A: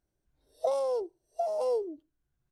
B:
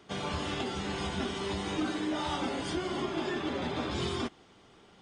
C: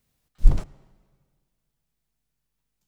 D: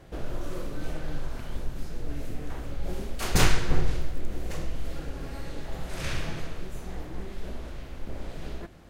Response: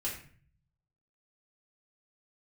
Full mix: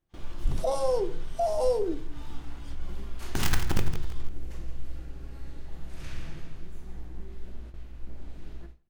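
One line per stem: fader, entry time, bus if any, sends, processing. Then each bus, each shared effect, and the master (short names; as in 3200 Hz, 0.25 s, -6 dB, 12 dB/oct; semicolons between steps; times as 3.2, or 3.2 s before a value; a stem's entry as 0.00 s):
+2.5 dB, 0.00 s, bus A, send -6.5 dB, no echo send, dry
-14.0 dB, 0.00 s, no bus, no send, no echo send, hard clip -35 dBFS, distortion -8 dB; HPF 710 Hz 24 dB/oct
-7.0 dB, 0.00 s, bus A, no send, no echo send, dry
-15.5 dB, 0.00 s, no bus, send -6.5 dB, echo send -7 dB, wrapped overs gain 10.5 dB
bus A: 0.0 dB, tone controls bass -2 dB, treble +7 dB; limiter -23 dBFS, peak gain reduction 12 dB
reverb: on, RT60 0.45 s, pre-delay 3 ms
echo: feedback echo 0.165 s, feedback 35%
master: bell 560 Hz -6 dB 0.4 oct; gate with hold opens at -37 dBFS; low shelf 420 Hz +5 dB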